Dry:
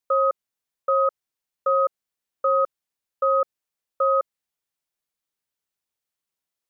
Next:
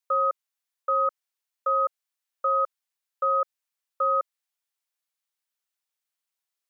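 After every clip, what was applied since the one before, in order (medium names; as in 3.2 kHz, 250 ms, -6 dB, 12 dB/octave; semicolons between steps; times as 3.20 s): Bessel high-pass 860 Hz, order 2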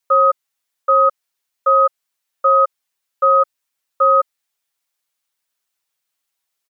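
comb 7.3 ms; trim +7.5 dB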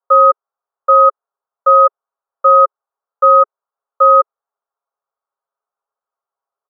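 elliptic band-pass 420–1300 Hz; trim +5 dB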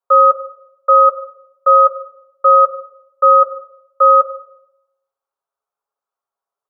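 simulated room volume 220 m³, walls mixed, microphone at 0.34 m; trim -1 dB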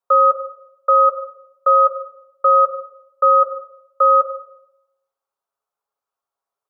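peak limiter -6 dBFS, peak gain reduction 4 dB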